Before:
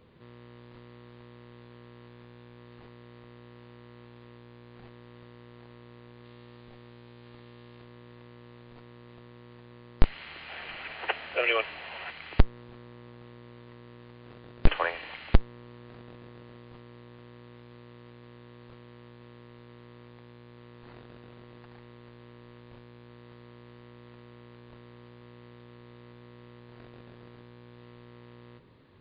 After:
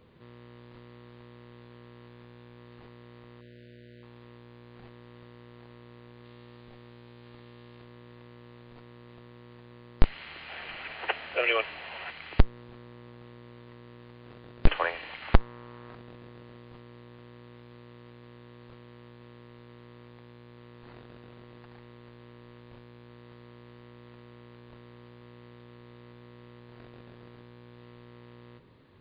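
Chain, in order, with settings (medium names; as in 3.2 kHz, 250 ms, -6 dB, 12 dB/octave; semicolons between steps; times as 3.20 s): 3.41–4.03 s: brick-wall FIR band-stop 680–1400 Hz; 15.22–15.95 s: peaking EQ 1.1 kHz +7.5 dB 1.7 oct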